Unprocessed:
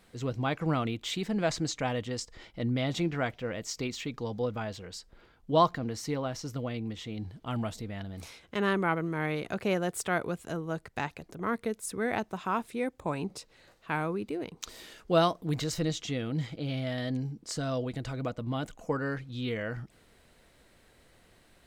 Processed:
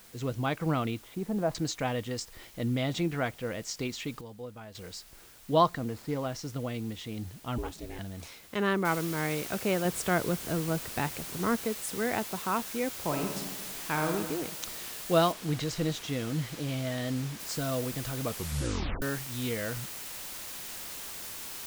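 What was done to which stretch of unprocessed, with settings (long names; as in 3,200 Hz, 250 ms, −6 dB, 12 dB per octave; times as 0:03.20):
0:01.02–0:01.55: Chebyshev low-pass filter 940 Hz
0:04.21–0:04.75: clip gain −10.5 dB
0:05.80–0:06.26: running median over 15 samples
0:07.58–0:07.99: ring modulation 180 Hz
0:08.85: noise floor change −55 dB −41 dB
0:09.85–0:11.57: low-shelf EQ 410 Hz +6 dB
0:12.96–0:14.12: thrown reverb, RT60 1.3 s, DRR 3 dB
0:15.32–0:17.40: high-shelf EQ 8,800 Hz −10.5 dB
0:18.24: tape stop 0.78 s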